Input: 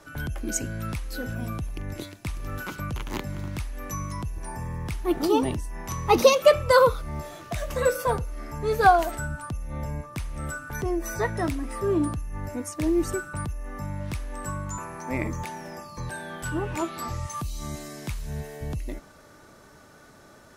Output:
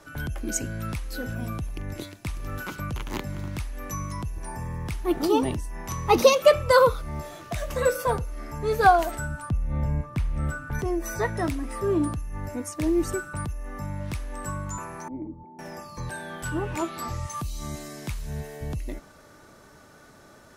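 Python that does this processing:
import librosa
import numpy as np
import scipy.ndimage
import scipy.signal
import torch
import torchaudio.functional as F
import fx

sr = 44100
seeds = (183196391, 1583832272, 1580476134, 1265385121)

y = fx.bass_treble(x, sr, bass_db=7, treble_db=-8, at=(9.49, 10.79))
y = fx.formant_cascade(y, sr, vowel='u', at=(15.08, 15.59))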